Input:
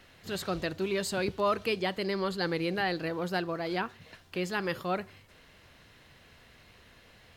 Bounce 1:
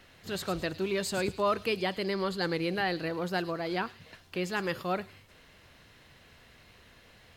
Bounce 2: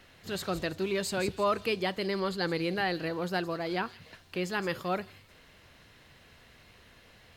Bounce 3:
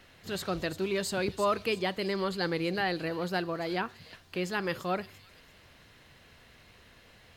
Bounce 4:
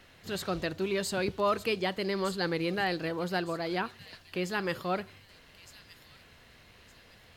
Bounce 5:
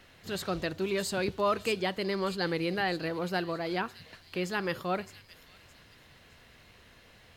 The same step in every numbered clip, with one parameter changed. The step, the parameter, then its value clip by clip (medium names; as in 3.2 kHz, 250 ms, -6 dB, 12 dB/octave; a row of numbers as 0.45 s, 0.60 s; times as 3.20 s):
feedback echo behind a high-pass, time: 106 ms, 167 ms, 341 ms, 1213 ms, 615 ms